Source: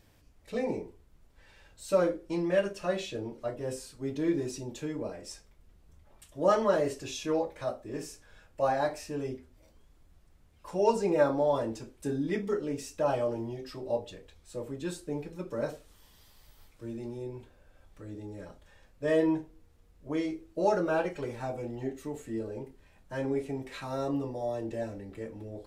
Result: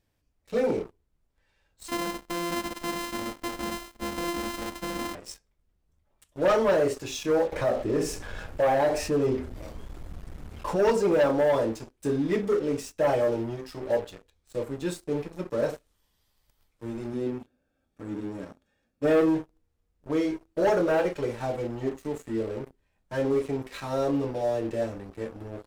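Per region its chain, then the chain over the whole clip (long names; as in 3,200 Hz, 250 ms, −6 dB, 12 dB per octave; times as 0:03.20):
0:01.88–0:05.15: samples sorted by size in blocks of 128 samples + downward compressor, threshold −33 dBFS + comb filter 3.9 ms, depth 96%
0:07.52–0:10.76: high-shelf EQ 2,500 Hz −8.5 dB + envelope flattener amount 50%
0:17.13–0:19.21: parametric band 250 Hz +12.5 dB 0.56 octaves + notch comb filter 1,000 Hz + single-tap delay 132 ms −23.5 dB
whole clip: dynamic equaliser 480 Hz, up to +5 dB, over −39 dBFS, Q 2.1; leveller curve on the samples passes 3; level −7 dB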